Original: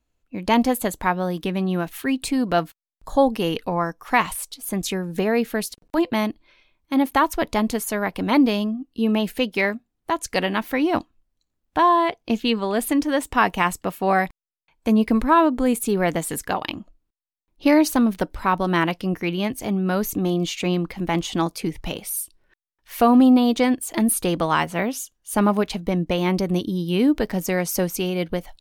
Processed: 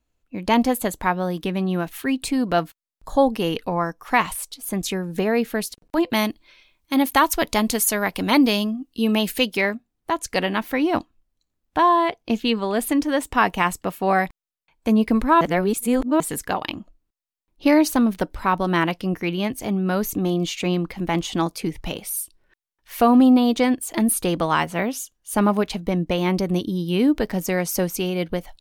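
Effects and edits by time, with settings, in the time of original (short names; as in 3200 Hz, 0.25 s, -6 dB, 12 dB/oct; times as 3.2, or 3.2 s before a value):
6.1–9.57 high shelf 2600 Hz +10 dB
15.41–16.2 reverse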